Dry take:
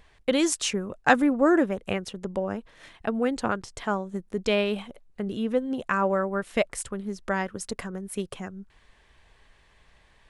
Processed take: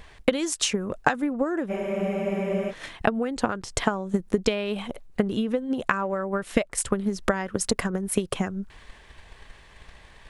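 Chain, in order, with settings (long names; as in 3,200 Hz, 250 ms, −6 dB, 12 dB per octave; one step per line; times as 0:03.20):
downward compressor 20 to 1, threshold −32 dBFS, peak gain reduction 20.5 dB
transient designer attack +7 dB, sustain +3 dB
frozen spectrum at 0:01.71, 0.99 s
level +8 dB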